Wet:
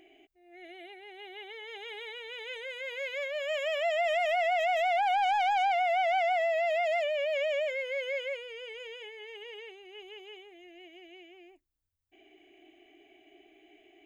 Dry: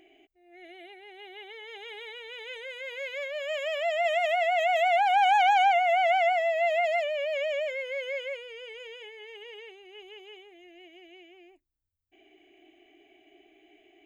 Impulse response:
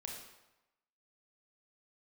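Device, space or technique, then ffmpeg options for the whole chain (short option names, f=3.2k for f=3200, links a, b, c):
soft clipper into limiter: -af "asoftclip=type=tanh:threshold=-17.5dB,alimiter=limit=-23dB:level=0:latency=1:release=31"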